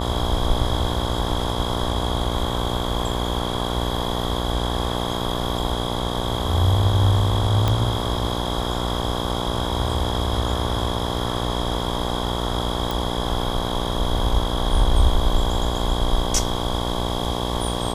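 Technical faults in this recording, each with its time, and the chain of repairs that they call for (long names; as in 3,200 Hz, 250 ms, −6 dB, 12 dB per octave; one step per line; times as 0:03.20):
mains buzz 60 Hz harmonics 19 −26 dBFS
0:07.68: click −8 dBFS
0:12.91: click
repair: click removal
hum removal 60 Hz, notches 19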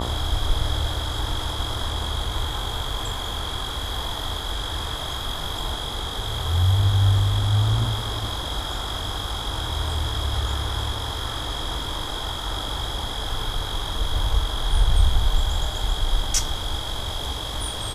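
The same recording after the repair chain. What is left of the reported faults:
none of them is left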